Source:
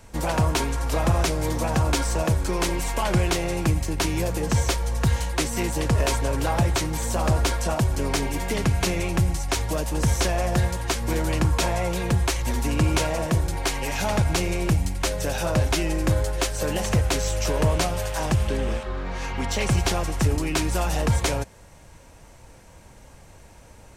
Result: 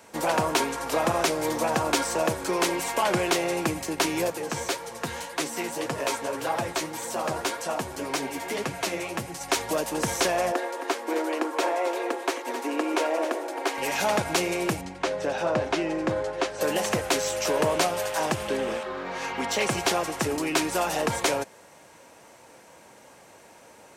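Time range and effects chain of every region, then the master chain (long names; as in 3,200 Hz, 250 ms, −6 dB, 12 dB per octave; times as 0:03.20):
0:04.30–0:09.41: mains-hum notches 60/120/180/240/300/360/420/480/540 Hz + flanger 1.8 Hz, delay 5.7 ms, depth 8.3 ms, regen +38%
0:10.52–0:13.78: linear-phase brick-wall high-pass 250 Hz + high-shelf EQ 2,600 Hz −10 dB + single-tap delay 267 ms −11 dB
0:14.81–0:16.61: low-pass filter 6,300 Hz + high-shelf EQ 2,400 Hz −8.5 dB
whole clip: high-pass filter 300 Hz 12 dB per octave; parametric band 7,000 Hz −2.5 dB 2.5 octaves; level +2.5 dB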